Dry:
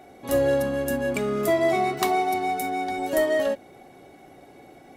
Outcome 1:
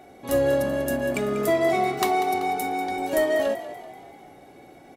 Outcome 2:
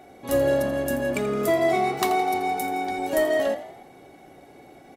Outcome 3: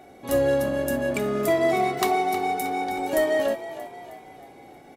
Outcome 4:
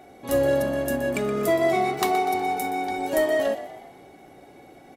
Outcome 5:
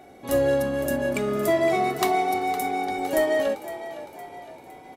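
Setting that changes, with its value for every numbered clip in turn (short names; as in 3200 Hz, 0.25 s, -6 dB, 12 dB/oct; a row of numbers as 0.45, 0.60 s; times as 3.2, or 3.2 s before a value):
frequency-shifting echo, time: 192, 83, 315, 122, 511 ms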